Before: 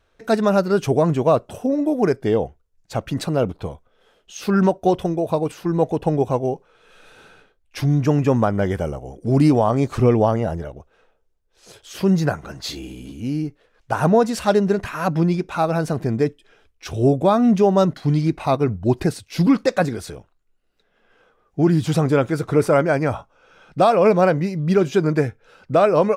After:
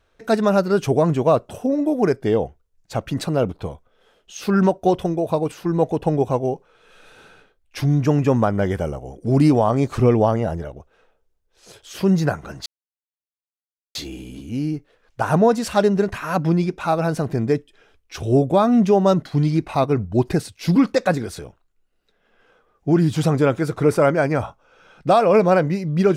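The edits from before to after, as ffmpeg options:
ffmpeg -i in.wav -filter_complex "[0:a]asplit=2[link_01][link_02];[link_01]atrim=end=12.66,asetpts=PTS-STARTPTS,afade=type=out:start_time=12.656:duration=0.004:curve=hsin,apad=pad_dur=1.29[link_03];[link_02]atrim=start=12.66,asetpts=PTS-STARTPTS,afade=type=in:duration=0.004:curve=hsin[link_04];[link_03][link_04]concat=n=2:v=0:a=1" out.wav

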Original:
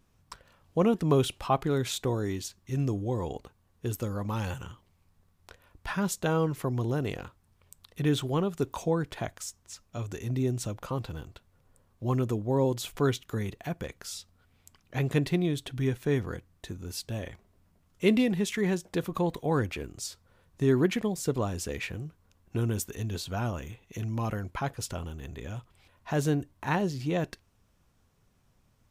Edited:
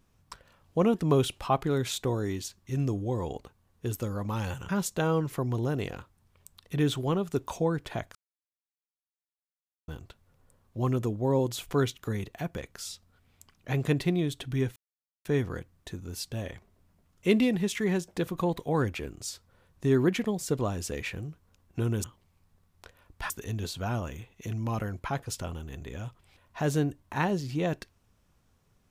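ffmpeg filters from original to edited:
ffmpeg -i in.wav -filter_complex "[0:a]asplit=7[link_01][link_02][link_03][link_04][link_05][link_06][link_07];[link_01]atrim=end=4.692[link_08];[link_02]atrim=start=5.948:end=9.41,asetpts=PTS-STARTPTS,afade=type=out:start_time=3.458:duration=0.004:curve=hsin[link_09];[link_03]atrim=start=9.41:end=11.14,asetpts=PTS-STARTPTS,volume=0[link_10];[link_04]atrim=start=11.14:end=16.02,asetpts=PTS-STARTPTS,afade=type=in:duration=0.004:curve=hsin,afade=type=out:start_time=4.876:duration=0.004:curve=hsin,apad=pad_dur=0.49[link_11];[link_05]atrim=start=16.02:end=22.812,asetpts=PTS-STARTPTS,afade=type=in:duration=0.004:curve=hsin[link_12];[link_06]atrim=start=4.688:end=5.952[link_13];[link_07]atrim=start=22.808[link_14];[link_09][link_10][link_11][link_12]concat=n=4:v=0:a=1[link_15];[link_08][link_15]acrossfade=duration=0.004:curve1=hsin:curve2=hsin[link_16];[link_16][link_13]acrossfade=duration=0.004:curve1=hsin:curve2=hsin[link_17];[link_17][link_14]acrossfade=duration=0.004:curve1=hsin:curve2=hsin" out.wav

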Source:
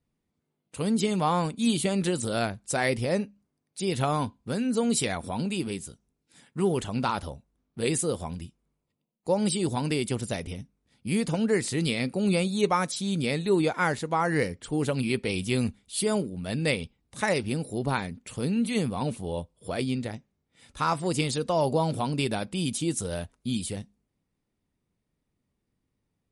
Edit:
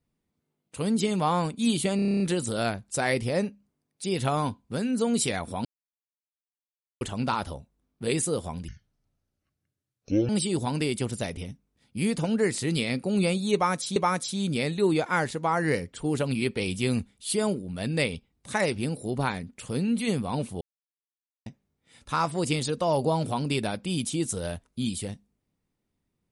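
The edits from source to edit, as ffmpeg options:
ffmpeg -i in.wav -filter_complex "[0:a]asplit=16[link_01][link_02][link_03][link_04][link_05][link_06][link_07][link_08][link_09][link_10][link_11][link_12][link_13][link_14][link_15][link_16];[link_01]atrim=end=1.992[link_17];[link_02]atrim=start=1.958:end=1.992[link_18];[link_03]atrim=start=1.958:end=1.992[link_19];[link_04]atrim=start=1.958:end=1.992[link_20];[link_05]atrim=start=1.958:end=1.992[link_21];[link_06]atrim=start=1.958:end=1.992[link_22];[link_07]atrim=start=1.958:end=1.992[link_23];[link_08]atrim=start=1.958:end=1.992[link_24];[link_09]atrim=start=1.958:end=5.41,asetpts=PTS-STARTPTS,afade=type=out:start_time=3.448:duration=0.004:curve=hsin[link_25];[link_10]atrim=start=5.41:end=6.77,asetpts=PTS-STARTPTS,volume=0[link_26];[link_11]atrim=start=6.77:end=8.444,asetpts=PTS-STARTPTS,afade=type=in:duration=0.004:curve=hsin[link_27];[link_12]atrim=start=8.44:end=9.39,asetpts=PTS-STARTPTS,asetrate=26019,aresample=44100,atrim=end_sample=71008,asetpts=PTS-STARTPTS[link_28];[link_13]atrim=start=9.386:end=13.062[link_29];[link_14]atrim=start=12.638:end=19.29,asetpts=PTS-STARTPTS,afade=type=out:start_time=6.648:duration=0.004:curve=hsin[link_30];[link_15]atrim=start=19.29:end=20.14,asetpts=PTS-STARTPTS,volume=0[link_31];[link_16]atrim=start=20.14,asetpts=PTS-STARTPTS,afade=type=in:duration=0.004:curve=hsin[link_32];[link_17][link_18]acrossfade=duration=0.004:curve1=hsin:curve2=hsin[link_33];[link_33][link_19]acrossfade=duration=0.004:curve1=hsin:curve2=hsin[link_34];[link_34][link_20]acrossfade=duration=0.004:curve1=hsin:curve2=hsin[link_35];[link_35][link_21]acrossfade=duration=0.004:curve1=hsin:curve2=hsin[link_36];[link_36][link_22]acrossfade=duration=0.004:curve1=hsin:curve2=hsin[link_37];[link_37][link_23]acrossfade=duration=0.004:curve1=hsin:curve2=hsin[link_38];[link_38][link_24]acrossfade=duration=0.004:curve1=hsin:curve2=hsin[link_39];[link_25][link_26][link_27]concat=n=3:v=0:a=1[link_40];[link_39][link_40]acrossfade=duration=0.004:curve1=hsin:curve2=hsin[link_41];[link_41][link_28]acrossfade=duration=0.004:curve1=hsin:curve2=hsin[link_42];[link_42][link_29]acrossfade=duration=0.004:curve1=hsin:curve2=hsin[link_43];[link_30][link_31][link_32]concat=n=3:v=0:a=1[link_44];[link_43][link_44]acrossfade=duration=0.004:curve1=hsin:curve2=hsin" out.wav

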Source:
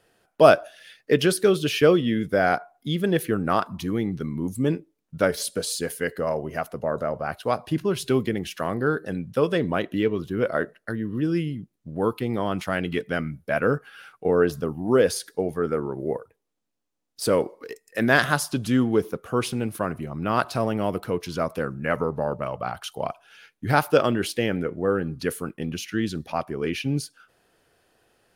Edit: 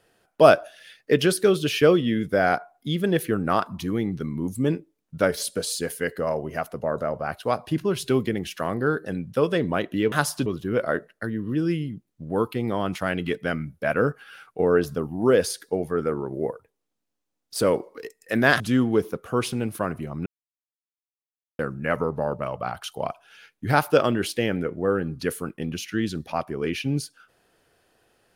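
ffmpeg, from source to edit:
ffmpeg -i in.wav -filter_complex "[0:a]asplit=6[link_01][link_02][link_03][link_04][link_05][link_06];[link_01]atrim=end=10.122[link_07];[link_02]atrim=start=18.258:end=18.602[link_08];[link_03]atrim=start=10.118:end=18.262[link_09];[link_04]atrim=start=18.598:end=20.26,asetpts=PTS-STARTPTS,afade=type=out:start_time=1.658:duration=0.004:curve=hsin[link_10];[link_05]atrim=start=20.26:end=21.59,asetpts=PTS-STARTPTS,volume=0[link_11];[link_06]atrim=start=21.59,asetpts=PTS-STARTPTS,afade=type=in:duration=0.004:curve=hsin[link_12];[link_07][link_08]acrossfade=duration=0.004:curve1=hsin:curve2=hsin[link_13];[link_13][link_09]acrossfade=duration=0.004:curve1=hsin:curve2=hsin[link_14];[link_10][link_11][link_12]concat=n=3:v=0:a=1[link_15];[link_14][link_15]acrossfade=duration=0.004:curve1=hsin:curve2=hsin" out.wav

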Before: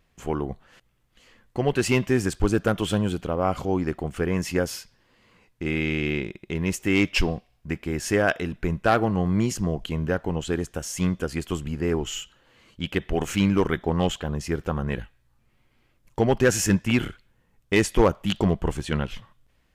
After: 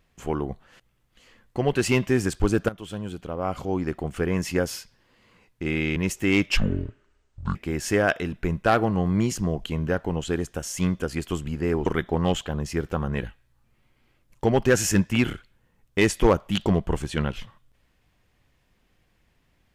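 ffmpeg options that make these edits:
ffmpeg -i in.wav -filter_complex "[0:a]asplit=6[link_01][link_02][link_03][link_04][link_05][link_06];[link_01]atrim=end=2.69,asetpts=PTS-STARTPTS,afade=type=out:start_time=2.686:duration=0.004:curve=hsin:silence=0.158489[link_07];[link_02]atrim=start=2.69:end=5.962,asetpts=PTS-STARTPTS,afade=type=in:duration=1.4:silence=0.158489[link_08];[link_03]atrim=start=6.588:end=7.204[link_09];[link_04]atrim=start=7.2:end=7.75,asetpts=PTS-STARTPTS,asetrate=24696,aresample=44100,atrim=end_sample=43312,asetpts=PTS-STARTPTS[link_10];[link_05]atrim=start=7.746:end=12.062[link_11];[link_06]atrim=start=13.608[link_12];[link_07][link_08]concat=n=2:v=0:a=1[link_13];[link_13][link_09]acrossfade=duration=0.004:curve1=hsin:curve2=hsin[link_14];[link_14][link_10]acrossfade=duration=0.004:curve1=hsin:curve2=hsin[link_15];[link_15][link_11]acrossfade=duration=0.004:curve1=hsin:curve2=hsin[link_16];[link_16][link_12]acrossfade=duration=0.004:curve1=hsin:curve2=hsin" out.wav

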